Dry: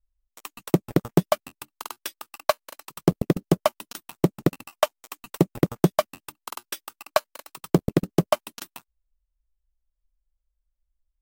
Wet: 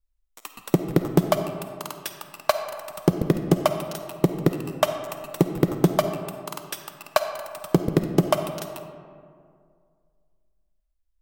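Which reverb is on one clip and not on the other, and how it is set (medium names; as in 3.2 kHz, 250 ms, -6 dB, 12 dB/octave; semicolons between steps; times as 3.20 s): algorithmic reverb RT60 2.2 s, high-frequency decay 0.45×, pre-delay 10 ms, DRR 7 dB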